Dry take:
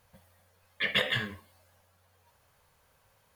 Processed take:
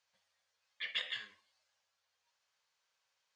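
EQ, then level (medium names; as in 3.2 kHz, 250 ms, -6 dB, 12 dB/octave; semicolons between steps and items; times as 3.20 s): band-pass filter 6.5 kHz, Q 1.3; distance through air 140 m; +2.0 dB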